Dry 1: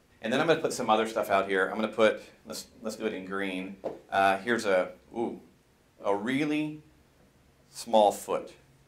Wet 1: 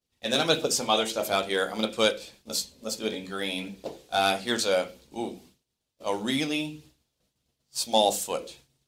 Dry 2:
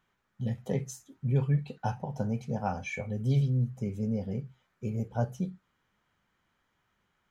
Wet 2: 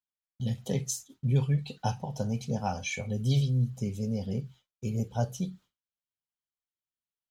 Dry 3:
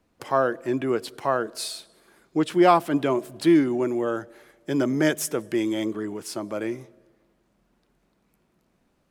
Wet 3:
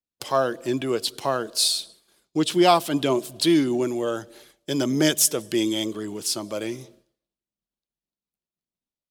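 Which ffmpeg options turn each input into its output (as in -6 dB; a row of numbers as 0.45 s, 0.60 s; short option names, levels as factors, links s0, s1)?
-af "agate=range=0.0224:threshold=0.00355:ratio=3:detection=peak,aphaser=in_gain=1:out_gain=1:delay=2:decay=0.22:speed=1.6:type=triangular,highshelf=f=2600:t=q:w=1.5:g=9.5"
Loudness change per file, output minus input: +1.0 LU, +1.0 LU, +1.5 LU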